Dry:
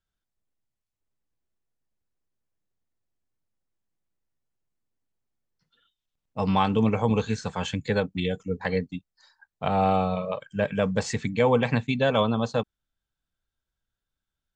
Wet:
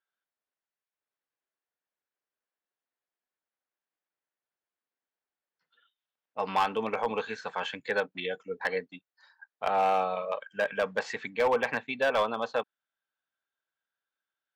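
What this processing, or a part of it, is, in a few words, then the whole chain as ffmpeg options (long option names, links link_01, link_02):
megaphone: -filter_complex "[0:a]asettb=1/sr,asplit=3[link_01][link_02][link_03];[link_01]atrim=end=11.354[link_04];[link_02]atrim=start=11.35:end=12.32,asetpts=PTS-STARTPTS,afade=type=in:duration=0.004:curve=qsin,afade=type=out:start_time=0.966:duration=0.004:curve=qsin,highshelf=frequency=4100:gain=-5.5[link_05];[link_03]atrim=start=12.316[link_06];[link_04][link_05]acrossfade=duration=0.004:curve1=hsin:curve2=qsin[link_07];[link_07][link_06]acrossfade=duration=0.004:curve1=qsin:curve2=hsin,highpass=530,lowpass=3200,equalizer=frequency=1600:width_type=o:width=0.33:gain=4.5,asoftclip=type=hard:threshold=-19dB"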